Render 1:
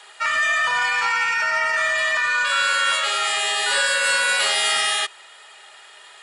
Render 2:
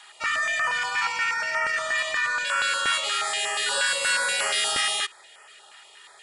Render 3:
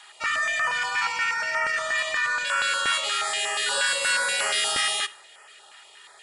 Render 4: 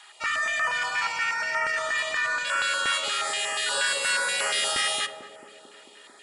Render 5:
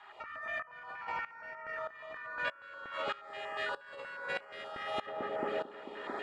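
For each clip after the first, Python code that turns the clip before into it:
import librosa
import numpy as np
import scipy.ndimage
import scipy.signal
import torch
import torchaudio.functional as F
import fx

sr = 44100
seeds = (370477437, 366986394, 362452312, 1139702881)

y1 = fx.filter_held_notch(x, sr, hz=8.4, low_hz=490.0, high_hz=3800.0)
y1 = y1 * librosa.db_to_amplitude(-2.5)
y2 = fx.rev_schroeder(y1, sr, rt60_s=0.61, comb_ms=26, drr_db=19.0)
y3 = fx.echo_banded(y2, sr, ms=222, feedback_pct=83, hz=300.0, wet_db=-4.5)
y3 = y3 * librosa.db_to_amplitude(-1.5)
y4 = scipy.signal.sosfilt(scipy.signal.butter(2, 1300.0, 'lowpass', fs=sr, output='sos'), y3)
y4 = fx.over_compress(y4, sr, threshold_db=-44.0, ratio=-1.0)
y4 = fx.tremolo_decay(y4, sr, direction='swelling', hz=1.6, depth_db=18)
y4 = y4 * librosa.db_to_amplitude(9.5)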